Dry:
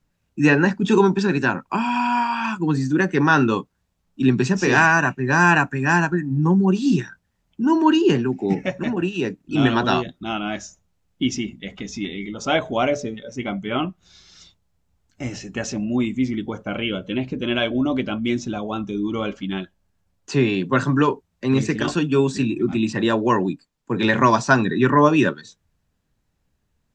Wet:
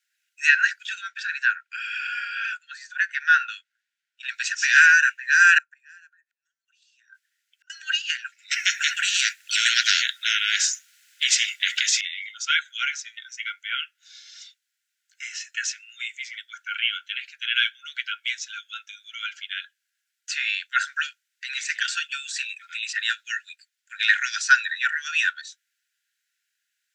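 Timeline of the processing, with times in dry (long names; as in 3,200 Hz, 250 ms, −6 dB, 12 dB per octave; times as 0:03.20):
0:00.86–0:04.29: RIAA equalisation playback
0:05.58–0:07.70: gate with flip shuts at −18 dBFS, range −31 dB
0:08.51–0:12.01: every bin compressed towards the loudest bin 4 to 1
whole clip: Chebyshev high-pass filter 1,400 Hz, order 10; level +4.5 dB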